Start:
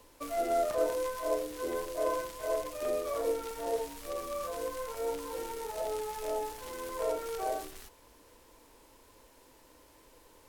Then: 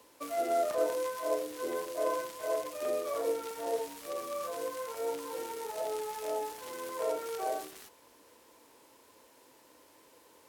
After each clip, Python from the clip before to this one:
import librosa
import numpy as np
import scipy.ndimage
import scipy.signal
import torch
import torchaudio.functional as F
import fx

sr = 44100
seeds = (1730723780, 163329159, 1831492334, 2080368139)

y = scipy.signal.sosfilt(scipy.signal.bessel(2, 190.0, 'highpass', norm='mag', fs=sr, output='sos'), x)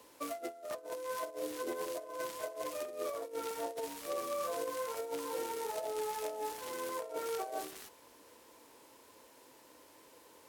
y = fx.over_compress(x, sr, threshold_db=-36.0, ratio=-0.5)
y = y * librosa.db_to_amplitude(-2.0)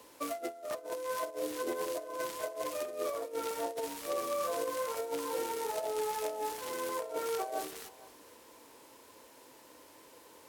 y = x + 10.0 ** (-21.0 / 20.0) * np.pad(x, (int(459 * sr / 1000.0), 0))[:len(x)]
y = y * librosa.db_to_amplitude(3.0)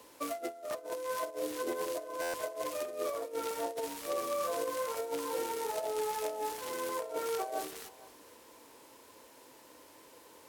y = fx.buffer_glitch(x, sr, at_s=(2.21,), block=512, repeats=10)